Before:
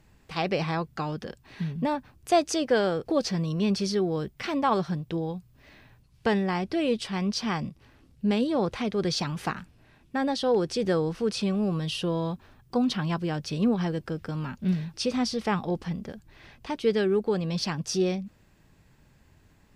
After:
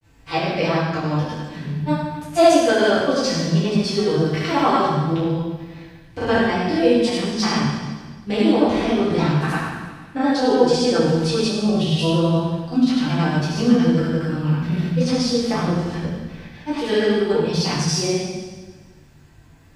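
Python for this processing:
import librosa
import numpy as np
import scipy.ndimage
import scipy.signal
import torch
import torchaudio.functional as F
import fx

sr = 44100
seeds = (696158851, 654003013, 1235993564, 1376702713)

y = fx.granulator(x, sr, seeds[0], grain_ms=100.0, per_s=20.0, spray_ms=100.0, spread_st=0)
y = fx.rev_fdn(y, sr, rt60_s=1.4, lf_ratio=1.2, hf_ratio=1.0, size_ms=61.0, drr_db=-9.5)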